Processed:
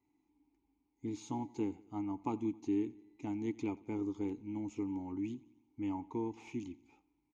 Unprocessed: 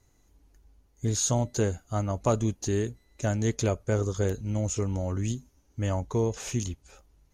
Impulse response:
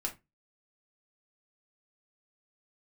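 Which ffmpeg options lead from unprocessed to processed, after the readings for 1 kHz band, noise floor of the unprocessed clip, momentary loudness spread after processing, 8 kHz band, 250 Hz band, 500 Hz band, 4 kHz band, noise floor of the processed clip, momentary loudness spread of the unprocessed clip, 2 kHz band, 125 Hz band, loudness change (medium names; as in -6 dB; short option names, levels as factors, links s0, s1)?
-9.0 dB, -65 dBFS, 8 LU, under -25 dB, -4.0 dB, -14.5 dB, under -20 dB, -80 dBFS, 7 LU, -15.0 dB, -20.5 dB, -10.5 dB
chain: -filter_complex "[0:a]asplit=3[s0][s1][s2];[s0]bandpass=f=300:t=q:w=8,volume=1[s3];[s1]bandpass=f=870:t=q:w=8,volume=0.501[s4];[s2]bandpass=f=2240:t=q:w=8,volume=0.355[s5];[s3][s4][s5]amix=inputs=3:normalize=0,aecho=1:1:89|178|267|356:0.0794|0.0445|0.0249|0.0139,volume=1.41"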